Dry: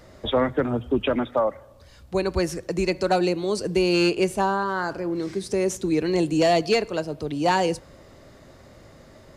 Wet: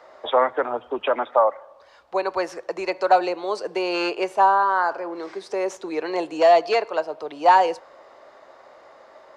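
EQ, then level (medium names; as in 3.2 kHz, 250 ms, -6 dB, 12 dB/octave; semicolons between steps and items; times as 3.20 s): three-band isolator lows -22 dB, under 360 Hz, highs -17 dB, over 6.1 kHz; peaking EQ 900 Hz +14.5 dB 2 oct; treble shelf 8.3 kHz +6.5 dB; -5.5 dB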